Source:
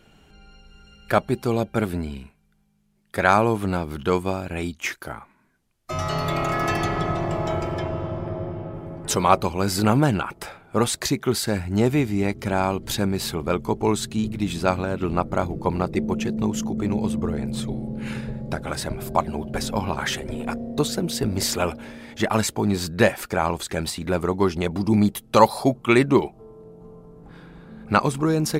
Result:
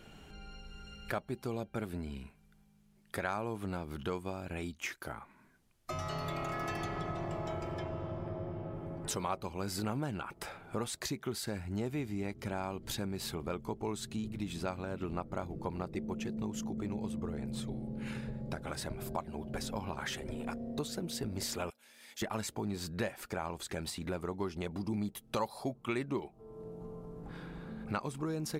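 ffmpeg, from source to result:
-filter_complex "[0:a]asettb=1/sr,asplit=3[a][b][c];[a]atrim=end=21.704[d];[b]atrim=start=21.7:end=22.22,asetpts=PTS-STARTPTS,afade=t=in:d=0.004:c=qsin,afade=t=out:st=0.516:d=0.004:c=qsin,aderivative[e];[c]atrim=start=22.216[f];[d][e]acrossfade=d=0.004:c1=hsin:c2=qsin[g];[g][f]acrossfade=d=0.004:c1=qsin:c2=hsin,acompressor=threshold=-42dB:ratio=2.5"

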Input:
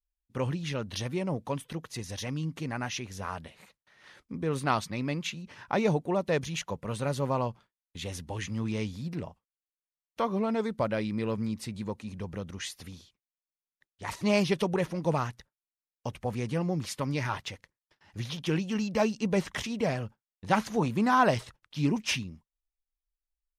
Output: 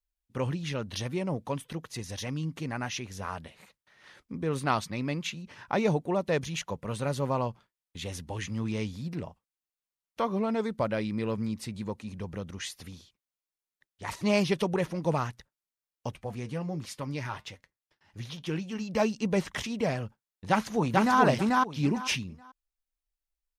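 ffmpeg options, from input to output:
-filter_complex "[0:a]asplit=3[a][b][c];[a]afade=t=out:st=16.14:d=0.02[d];[b]flanger=delay=5.6:depth=2:regen=-74:speed=1.3:shape=sinusoidal,afade=t=in:st=16.14:d=0.02,afade=t=out:st=18.88:d=0.02[e];[c]afade=t=in:st=18.88:d=0.02[f];[d][e][f]amix=inputs=3:normalize=0,asplit=2[g][h];[h]afade=t=in:st=20.49:d=0.01,afade=t=out:st=21.19:d=0.01,aecho=0:1:440|880|1320:0.944061|0.188812|0.0377624[i];[g][i]amix=inputs=2:normalize=0"

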